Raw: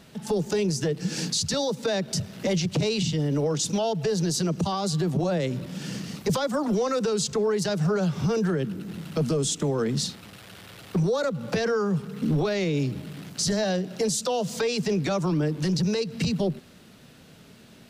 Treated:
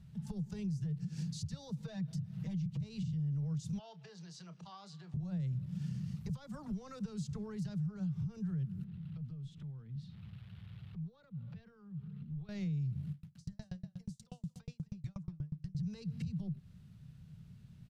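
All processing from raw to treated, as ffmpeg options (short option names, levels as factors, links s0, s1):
-filter_complex "[0:a]asettb=1/sr,asplit=3[s0][s1][s2];[s0]atrim=end=1.804[s3];[s1]atrim=start=1.8:end=2.8,asetpts=PTS-STARTPTS,afade=t=in:d=0.004:c=qsin,afade=t=out:st=0.996:d=0.004:c=qsin,equalizer=f=10000:w=0.46:g=-4,aecho=1:1:6.3:0.9,atrim=end_sample=44100,acompressor=threshold=0.0282:ratio=1.5:attack=3.2:release=140:knee=1:detection=peak[s4];[s2]atrim=start=2.796[s5];[s3][s4]acrossfade=d=0.004:c1=hsin:c2=qsin[s6];[s6][s5]acrossfade=d=0.004:c1=qsin:c2=hsin,asettb=1/sr,asplit=3[s7][s8][s9];[s7]atrim=end=3.794[s10];[s8]atrim=start=3.79:end=5.14,asetpts=PTS-STARTPTS,afade=t=in:d=0.004:c=qsin,afade=t=out:st=1.346:d=0.004:c=qsin,highpass=660,lowpass=4700,asplit=2[s11][s12];[s12]adelay=29,volume=0.237[s13];[s11][s13]amix=inputs=2:normalize=0,atrim=end_sample=59535[s14];[s9]atrim=start=5.136[s15];[s10][s14]acrossfade=d=0.004:c1=hsin:c2=qsin[s16];[s16][s15]acrossfade=d=0.004:c1=qsin:c2=hsin,asettb=1/sr,asplit=3[s17][s18][s19];[s17]atrim=end=8.844[s20];[s18]atrim=start=8.84:end=12.49,asetpts=PTS-STARTPTS,afade=t=in:d=0.004:c=qsin,afade=t=out:st=3.646:d=0.004:c=qsin,highshelf=f=4900:t=q:w=1.5:g=-11.5,acompressor=threshold=0.0112:ratio=8:attack=3.2:release=140:knee=1:detection=peak[s21];[s19]atrim=start=12.486[s22];[s20][s21]acrossfade=d=0.004:c1=hsin:c2=qsin[s23];[s23][s22]acrossfade=d=0.004:c1=qsin:c2=hsin,asettb=1/sr,asplit=3[s24][s25][s26];[s24]atrim=end=13.114[s27];[s25]atrim=start=13.11:end=15.75,asetpts=PTS-STARTPTS,afade=t=in:d=0.004:c=qsin,afade=t=out:st=2.636:d=0.004:c=qsin,bandreject=f=410:w=6.4,aecho=1:1:230:0.251,atrim=end_sample=116424,aeval=exprs='val(0)*pow(10,-39*if(lt(mod(8.3*n/s,1),2*abs(8.3)/1000),1-mod(8.3*n/s,1)/(2*abs(8.3)/1000),(mod(8.3*n/s,1)-2*abs(8.3)/1000)/(1-2*abs(8.3)/1000))/20)':c=same[s28];[s26]atrim=start=15.746[s29];[s27][s28]acrossfade=d=0.004:c1=hsin:c2=qsin[s30];[s30][s29]acrossfade=d=0.004:c1=qsin:c2=hsin,firequalizer=gain_entry='entry(150,0);entry(270,-27);entry(560,-29);entry(920,-24)':delay=0.05:min_phase=1,acompressor=threshold=0.01:ratio=1.5,alimiter=level_in=3.16:limit=0.0631:level=0:latency=1:release=152,volume=0.316,volume=1.41"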